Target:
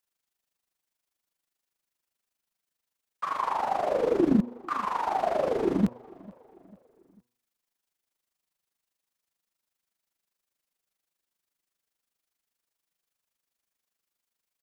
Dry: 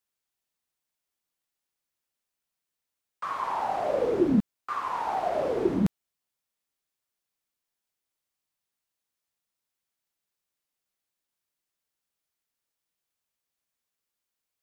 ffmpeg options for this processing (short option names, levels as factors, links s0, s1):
-filter_complex "[0:a]equalizer=f=100:t=o:w=0.41:g=-9,bandreject=f=121.3:t=h:w=4,bandreject=f=242.6:t=h:w=4,bandreject=f=363.9:t=h:w=4,bandreject=f=485.2:t=h:w=4,bandreject=f=606.5:t=h:w=4,bandreject=f=727.8:t=h:w=4,bandreject=f=849.1:t=h:w=4,bandreject=f=970.4:t=h:w=4,bandreject=f=1091.7:t=h:w=4,bandreject=f=1213:t=h:w=4,tremolo=f=25:d=0.71,asplit=2[s0][s1];[s1]adelay=446,lowpass=f=3400:p=1,volume=0.0708,asplit=2[s2][s3];[s3]adelay=446,lowpass=f=3400:p=1,volume=0.5,asplit=2[s4][s5];[s5]adelay=446,lowpass=f=3400:p=1,volume=0.5[s6];[s0][s2][s4][s6]amix=inputs=4:normalize=0,volume=1.68"